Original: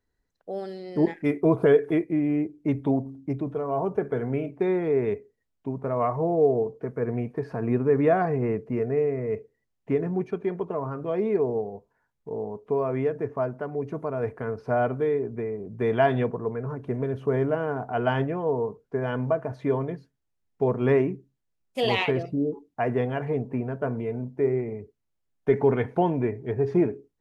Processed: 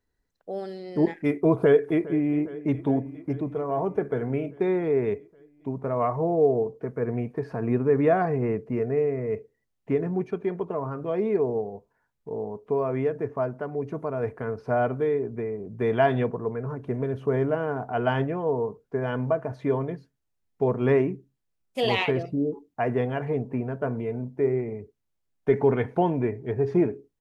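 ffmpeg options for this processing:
-filter_complex "[0:a]asplit=2[s0][s1];[s1]afade=t=in:st=1.55:d=0.01,afade=t=out:st=2.37:d=0.01,aecho=0:1:410|820|1230|1640|2050|2460|2870|3280|3690:0.125893|0.0944194|0.0708146|0.0531109|0.0398332|0.0298749|0.0224062|0.0168046|0.0126035[s2];[s0][s2]amix=inputs=2:normalize=0"

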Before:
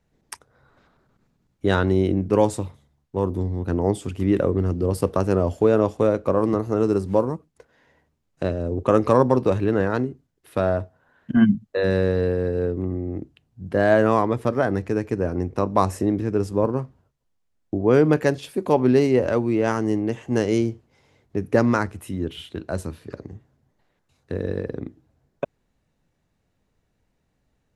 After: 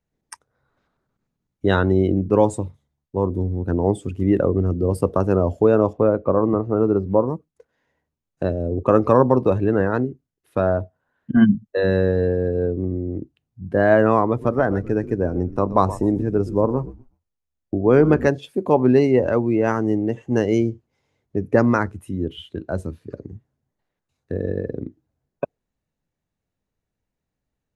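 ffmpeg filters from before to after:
-filter_complex "[0:a]asettb=1/sr,asplit=3[s0][s1][s2];[s0]atrim=end=5.934[s3];[s1]atrim=start=5.93:end=7.28,asetpts=PTS-STARTPTS,afade=t=in:d=0.004:c=qsin,afade=t=out:st=1.346:d=0.004:c=qsin,lowpass=2700[s4];[s2]atrim=start=7.276[s5];[s3][s4]acrossfade=d=0.004:c1=hsin:c2=qsin[s6];[s6][s5]acrossfade=d=0.004:c1=qsin:c2=hsin,asettb=1/sr,asplit=3[s7][s8][s9];[s7]atrim=end=14.294[s10];[s8]atrim=start=14.29:end=18.28,asetpts=PTS-STARTPTS,afade=t=in:d=0.004:c=qsin,afade=t=out:st=3.986:d=0.004:c=qsin,asplit=4[s11][s12][s13][s14];[s12]adelay=123,afreqshift=-72,volume=0.188[s15];[s13]adelay=246,afreqshift=-144,volume=0.0638[s16];[s14]adelay=369,afreqshift=-216,volume=0.0219[s17];[s11][s15][s16][s17]amix=inputs=4:normalize=0,atrim=end_sample=175959[s18];[s9]atrim=start=18.276[s19];[s10][s18]acrossfade=d=0.004:c1=hsin:c2=qsin[s20];[s20][s19]acrossfade=d=0.004:c1=qsin:c2=hsin,afftdn=nr=13:nf=-35,equalizer=f=6500:w=7.8:g=3,volume=1.26"

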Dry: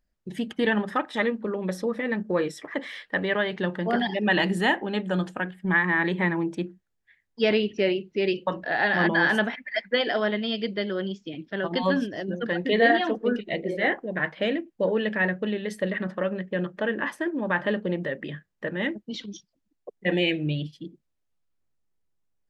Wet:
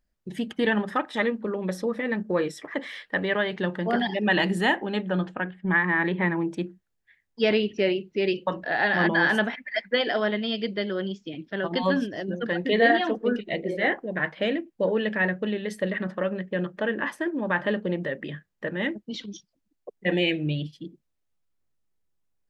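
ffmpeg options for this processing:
-filter_complex "[0:a]asettb=1/sr,asplit=3[s0][s1][s2];[s0]atrim=end=5.054[s3];[s1]atrim=start=5.05:end=6.44,asetpts=PTS-STARTPTS,afade=t=in:d=0.004:c=qsin,afade=t=out:st=1.386:d=0.004:c=qsin,lowpass=3200[s4];[s2]atrim=start=6.436[s5];[s3][s4]acrossfade=d=0.004:c1=hsin:c2=qsin[s6];[s6][s5]acrossfade=d=0.004:c1=qsin:c2=hsin"

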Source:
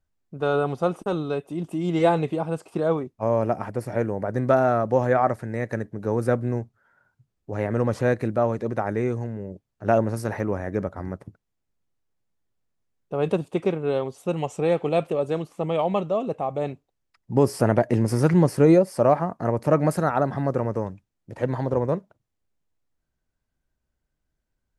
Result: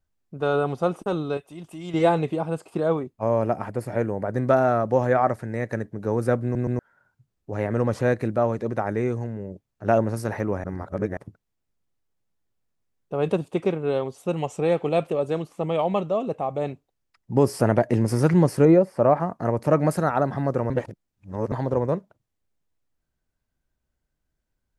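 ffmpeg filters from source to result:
-filter_complex "[0:a]asettb=1/sr,asplit=3[s0][s1][s2];[s0]atrim=end=1.374[s3];[s1]atrim=start=1.37:end=1.94,asetpts=PTS-STARTPTS,afade=t=in:d=0.004:c=qsin,afade=t=out:st=0.566:d=0.004:c=qsin,equalizer=f=260:t=o:w=2.6:g=-11.5[s4];[s2]atrim=start=1.936[s5];[s3][s4]acrossfade=d=0.004:c1=hsin:c2=qsin[s6];[s6][s5]acrossfade=d=0.004:c1=qsin:c2=hsin,asettb=1/sr,asplit=3[s7][s8][s9];[s7]atrim=end=2.484[s10];[s8]atrim=start=2.48:end=4.37,asetpts=PTS-STARTPTS,afade=t=in:d=0.004:c=qsin,afade=t=out:st=1.886:d=0.004:c=qsin,bandreject=f=5700:w=11[s11];[s9]atrim=start=4.366[s12];[s10][s11]acrossfade=d=0.004:c1=hsin:c2=qsin[s13];[s13][s12]acrossfade=d=0.004:c1=qsin:c2=hsin,asettb=1/sr,asplit=3[s14][s15][s16];[s14]atrim=end=18.654[s17];[s15]atrim=start=18.65:end=19.2,asetpts=PTS-STARTPTS,afade=t=in:d=0.004:c=qsin,afade=t=out:st=0.546:d=0.004:c=qsin,acrossover=split=2500[s18][s19];[s19]acompressor=threshold=0.00141:ratio=4:attack=1:release=60[s20];[s18][s20]amix=inputs=2:normalize=0[s21];[s16]atrim=start=19.196[s22];[s17][s21]acrossfade=d=0.004:c1=hsin:c2=qsin[s23];[s23][s22]acrossfade=d=0.004:c1=qsin:c2=hsin,asplit=8[s24][s25][s26][s27][s28][s29][s30][s31];[s24]atrim=end=6.552[s32];[s25]atrim=start=6.428:end=6.552[s33];[s26]atrim=start=6.428:end=6.552[s34];[s27]atrim=start=6.788:end=10.642[s35];[s28]atrim=start=10.638:end=11.172,asetpts=PTS-STARTPTS,areverse[s36];[s29]atrim=start=11.168:end=20.702[s37];[s30]atrim=start=20.698:end=21.522,asetpts=PTS-STARTPTS,areverse[s38];[s31]atrim=start=21.518[s39];[s32][s33]acrossfade=d=0.004:c1=hsin:c2=hsin[s40];[s40][s34]acrossfade=d=0.004:c1=hsin:c2=hsin[s41];[s41][s35]acrossfade=d=0.004:c1=hsin:c2=hsin[s42];[s42][s36]acrossfade=d=0.004:c1=hsin:c2=hsin[s43];[s43][s37]acrossfade=d=0.004:c1=hsin:c2=hsin[s44];[s44][s38]acrossfade=d=0.004:c1=hsin:c2=hsin[s45];[s45][s39]acrossfade=d=0.004:c1=hsin:c2=hsin"

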